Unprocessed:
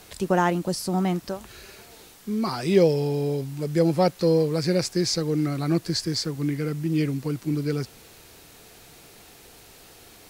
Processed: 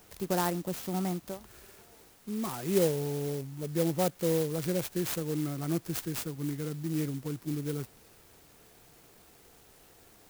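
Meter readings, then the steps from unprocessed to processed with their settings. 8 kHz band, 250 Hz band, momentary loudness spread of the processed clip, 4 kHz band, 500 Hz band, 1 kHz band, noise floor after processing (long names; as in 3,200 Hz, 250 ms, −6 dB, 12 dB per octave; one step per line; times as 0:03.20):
−4.0 dB, −8.0 dB, 10 LU, −11.5 dB, −8.5 dB, −9.0 dB, −59 dBFS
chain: converter with an unsteady clock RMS 0.088 ms
level −8 dB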